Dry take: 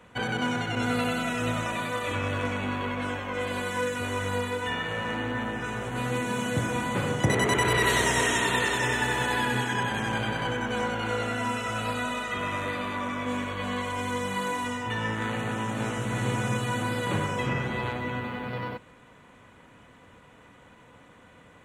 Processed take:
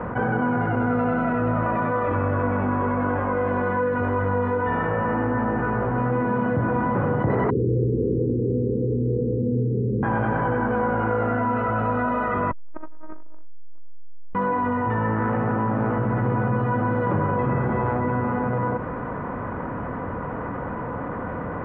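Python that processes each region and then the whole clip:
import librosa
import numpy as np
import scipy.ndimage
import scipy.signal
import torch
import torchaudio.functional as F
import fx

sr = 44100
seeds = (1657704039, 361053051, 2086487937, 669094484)

y = fx.chain(x, sr, fx.cheby1_lowpass(hz=520.0, order=10),
    fx.room_flutter(wall_m=9.9, rt60_s=0.89), at=(7.5, 10.03))
y = fx.chain(y, sr, fx.robotise(hz=312.0),
    fx.low_shelf(hz=440.0, db=10.5),
    fx.transformer_sat(knee_hz=460.0), at=(12.51, 14.35))
y = scipy.signal.sosfilt(scipy.signal.butter(4, 1400.0, 'lowpass', fs=sr, output='sos'), y)
y = fx.env_flatten(y, sr, amount_pct=70)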